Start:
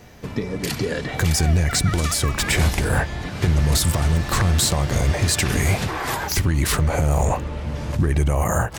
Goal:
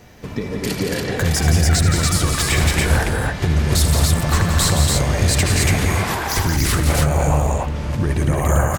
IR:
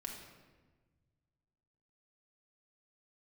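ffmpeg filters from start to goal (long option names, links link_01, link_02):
-af "aecho=1:1:78.72|172|218.7|285.7:0.316|0.501|0.282|0.794"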